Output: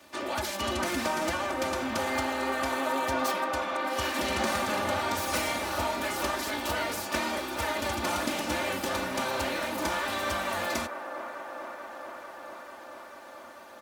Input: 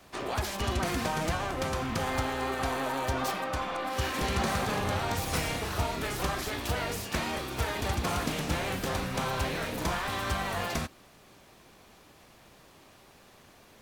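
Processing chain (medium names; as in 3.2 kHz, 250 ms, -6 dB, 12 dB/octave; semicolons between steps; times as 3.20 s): high-pass 66 Hz; bass shelf 120 Hz -11 dB; comb 3.4 ms, depth 74%; feedback echo behind a band-pass 442 ms, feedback 80%, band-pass 800 Hz, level -8 dB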